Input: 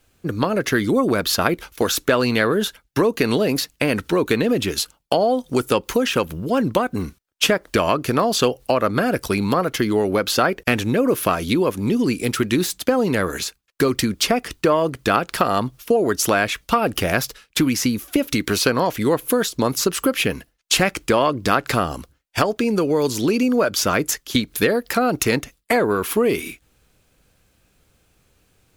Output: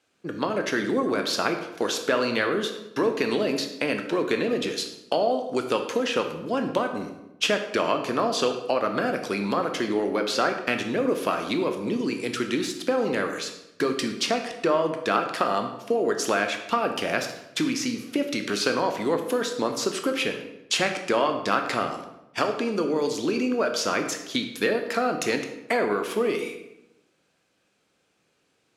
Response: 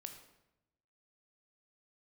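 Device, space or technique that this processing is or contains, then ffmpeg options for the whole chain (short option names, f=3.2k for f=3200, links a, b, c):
supermarket ceiling speaker: -filter_complex "[0:a]highpass=240,lowpass=7k[a];[1:a]atrim=start_sample=2205[b];[a][b]afir=irnorm=-1:irlink=0"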